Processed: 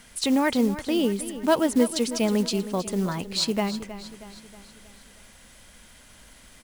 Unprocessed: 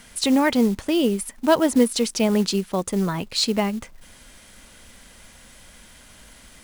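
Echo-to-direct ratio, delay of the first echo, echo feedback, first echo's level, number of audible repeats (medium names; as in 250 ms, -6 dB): -12.0 dB, 317 ms, 51%, -13.5 dB, 4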